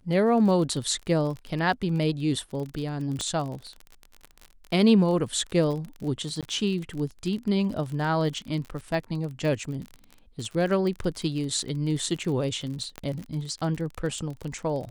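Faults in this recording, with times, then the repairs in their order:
crackle 35/s -32 dBFS
3.21 pop -17 dBFS
6.41–6.43 gap 17 ms
12.98 pop -19 dBFS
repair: de-click; interpolate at 6.41, 17 ms

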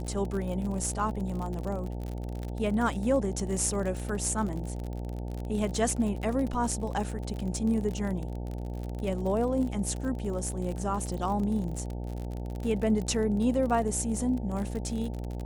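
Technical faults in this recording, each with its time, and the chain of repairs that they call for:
buzz 60 Hz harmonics 15 -35 dBFS
crackle 45/s -33 dBFS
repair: de-click; de-hum 60 Hz, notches 15

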